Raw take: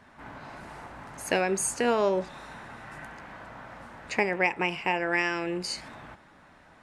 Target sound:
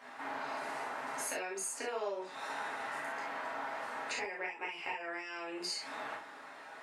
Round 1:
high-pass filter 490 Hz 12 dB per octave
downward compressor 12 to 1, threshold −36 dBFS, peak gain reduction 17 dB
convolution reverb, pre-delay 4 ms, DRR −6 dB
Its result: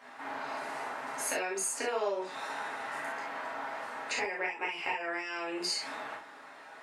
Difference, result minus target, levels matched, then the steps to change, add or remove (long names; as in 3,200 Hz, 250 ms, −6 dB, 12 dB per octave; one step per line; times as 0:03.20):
downward compressor: peak gain reduction −5.5 dB
change: downward compressor 12 to 1, threshold −42 dBFS, peak gain reduction 22.5 dB